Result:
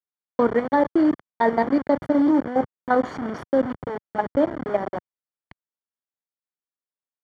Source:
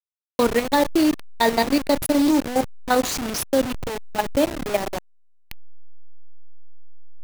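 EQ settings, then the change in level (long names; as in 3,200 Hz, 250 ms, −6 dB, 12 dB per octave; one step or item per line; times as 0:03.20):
Savitzky-Golay smoothing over 41 samples
high-pass filter 110 Hz 12 dB per octave
high-frequency loss of the air 57 metres
0.0 dB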